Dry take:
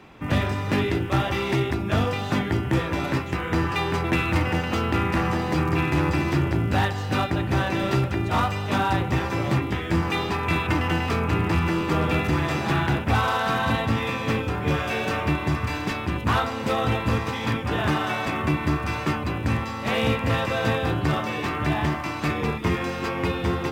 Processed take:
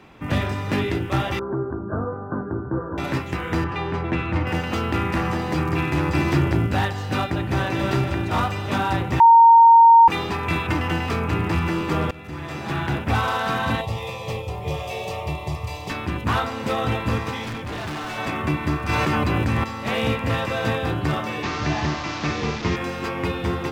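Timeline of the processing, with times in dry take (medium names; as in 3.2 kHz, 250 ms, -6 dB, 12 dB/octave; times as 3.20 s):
1.39–2.98 s: rippled Chebyshev low-pass 1.6 kHz, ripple 6 dB
3.64–4.47 s: tape spacing loss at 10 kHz 20 dB
6.15–6.67 s: gain +3 dB
7.29–7.85 s: echo throw 280 ms, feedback 60%, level -6.5 dB
9.20–10.08 s: bleep 922 Hz -7 dBFS
12.11–13.07 s: fade in, from -22.5 dB
13.81–15.90 s: static phaser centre 630 Hz, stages 4
17.43–18.18 s: hard clipper -28 dBFS
18.89–19.64 s: level flattener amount 100%
21.43–22.76 s: one-bit delta coder 32 kbps, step -25 dBFS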